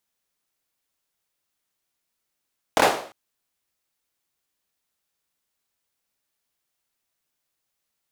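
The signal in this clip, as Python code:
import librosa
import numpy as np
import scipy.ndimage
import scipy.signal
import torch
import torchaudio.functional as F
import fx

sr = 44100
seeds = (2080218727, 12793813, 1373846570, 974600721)

y = fx.drum_clap(sr, seeds[0], length_s=0.35, bursts=3, spacing_ms=25, hz=630.0, decay_s=0.48)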